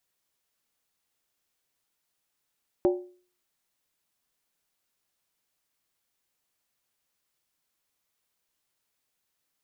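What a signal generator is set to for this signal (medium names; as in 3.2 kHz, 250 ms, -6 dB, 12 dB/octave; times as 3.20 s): skin hit, lowest mode 360 Hz, decay 0.43 s, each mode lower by 7.5 dB, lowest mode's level -16.5 dB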